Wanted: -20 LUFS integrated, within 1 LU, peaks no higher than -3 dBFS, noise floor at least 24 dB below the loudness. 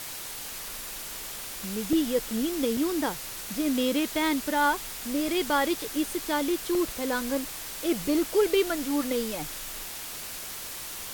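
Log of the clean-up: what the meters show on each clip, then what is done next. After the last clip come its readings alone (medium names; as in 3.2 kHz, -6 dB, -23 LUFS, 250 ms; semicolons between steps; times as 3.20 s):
dropouts 5; longest dropout 1.5 ms; noise floor -38 dBFS; noise floor target -53 dBFS; loudness -28.5 LUFS; peak level -12.5 dBFS; loudness target -20.0 LUFS
-> interpolate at 1.93/2.77/5.28/6.75/8.23 s, 1.5 ms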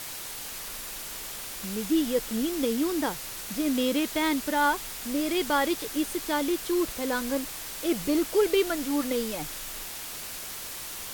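dropouts 0; noise floor -38 dBFS; noise floor target -53 dBFS
-> noise reduction 15 dB, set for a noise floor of -38 dBFS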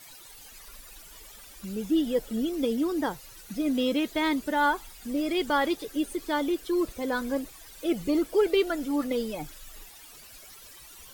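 noise floor -49 dBFS; noise floor target -52 dBFS
-> noise reduction 6 dB, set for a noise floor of -49 dBFS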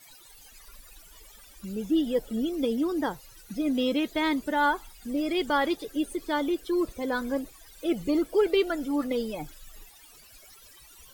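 noise floor -53 dBFS; loudness -28.0 LUFS; peak level -13.0 dBFS; loudness target -20.0 LUFS
-> trim +8 dB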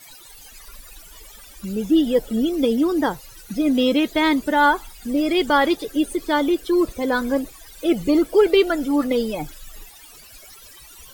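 loudness -20.0 LUFS; peak level -5.0 dBFS; noise floor -45 dBFS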